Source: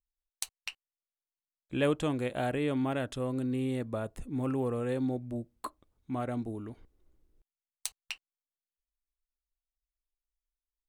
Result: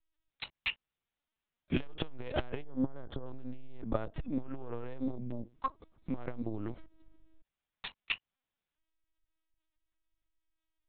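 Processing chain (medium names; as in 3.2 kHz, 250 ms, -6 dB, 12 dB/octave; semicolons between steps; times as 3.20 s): in parallel at +0.5 dB: compression, threshold -39 dBFS, peak gain reduction 14.5 dB; 2.62–3.27 s: on the sum: boxcar filter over 18 samples; LPC vocoder at 8 kHz pitch kept; transformer saturation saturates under 220 Hz; trim +3 dB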